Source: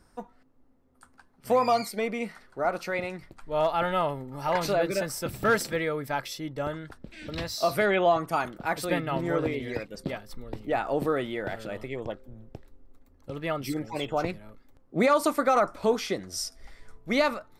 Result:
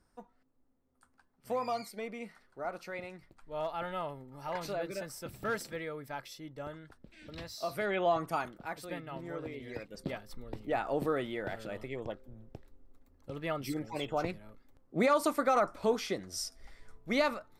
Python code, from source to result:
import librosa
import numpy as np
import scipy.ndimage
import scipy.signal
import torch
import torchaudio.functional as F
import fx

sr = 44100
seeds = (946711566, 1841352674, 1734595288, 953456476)

y = fx.gain(x, sr, db=fx.line((7.73, -11.0), (8.25, -4.5), (8.84, -13.5), (9.45, -13.5), (10.05, -5.0)))